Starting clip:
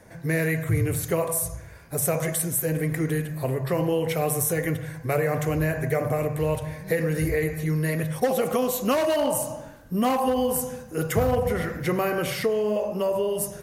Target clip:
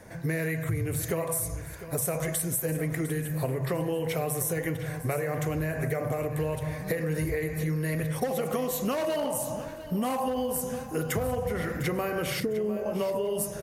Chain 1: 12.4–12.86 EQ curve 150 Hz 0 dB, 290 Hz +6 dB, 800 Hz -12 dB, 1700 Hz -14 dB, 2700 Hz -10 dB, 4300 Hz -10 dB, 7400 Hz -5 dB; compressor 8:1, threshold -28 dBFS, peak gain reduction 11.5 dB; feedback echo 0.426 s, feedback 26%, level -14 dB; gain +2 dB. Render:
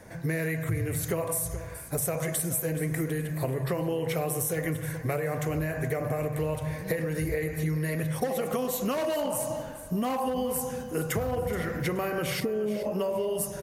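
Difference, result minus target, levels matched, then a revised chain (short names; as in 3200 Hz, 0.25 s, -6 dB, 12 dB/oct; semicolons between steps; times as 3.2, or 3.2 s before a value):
echo 0.277 s early
12.4–12.86 EQ curve 150 Hz 0 dB, 290 Hz +6 dB, 800 Hz -12 dB, 1700 Hz -14 dB, 2700 Hz -10 dB, 4300 Hz -10 dB, 7400 Hz -5 dB; compressor 8:1, threshold -28 dBFS, peak gain reduction 11.5 dB; feedback echo 0.703 s, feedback 26%, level -14 dB; gain +2 dB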